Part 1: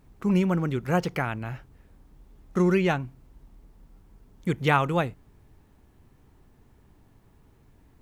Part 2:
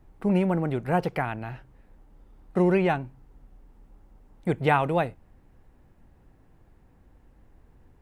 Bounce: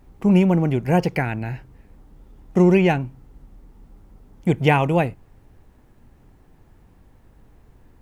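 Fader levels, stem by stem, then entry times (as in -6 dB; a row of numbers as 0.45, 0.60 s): +0.5, +3.0 dB; 0.00, 0.00 s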